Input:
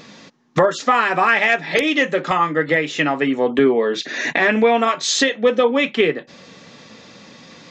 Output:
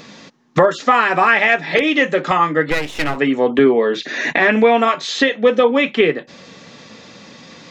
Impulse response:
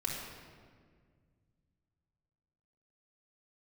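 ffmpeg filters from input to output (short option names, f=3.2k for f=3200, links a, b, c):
-filter_complex "[0:a]acrossover=split=3800[a][b];[b]acompressor=threshold=-38dB:ratio=4:attack=1:release=60[c];[a][c]amix=inputs=2:normalize=0,asplit=3[d][e][f];[d]afade=t=out:st=2.7:d=0.02[g];[e]aeval=exprs='max(val(0),0)':c=same,afade=t=in:st=2.7:d=0.02,afade=t=out:st=3.16:d=0.02[h];[f]afade=t=in:st=3.16:d=0.02[i];[g][h][i]amix=inputs=3:normalize=0,volume=2.5dB"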